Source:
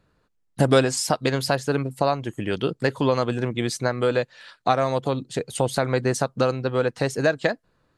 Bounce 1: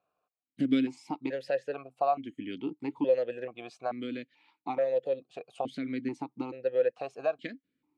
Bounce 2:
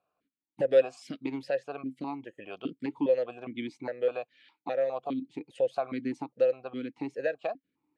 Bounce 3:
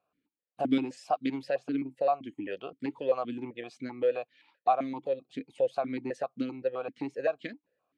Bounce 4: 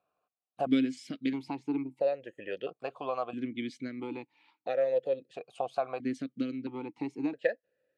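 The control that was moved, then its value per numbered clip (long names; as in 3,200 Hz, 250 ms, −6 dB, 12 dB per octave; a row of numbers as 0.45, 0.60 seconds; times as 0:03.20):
formant filter that steps through the vowels, speed: 2.3, 4.9, 7.7, 1.5 Hertz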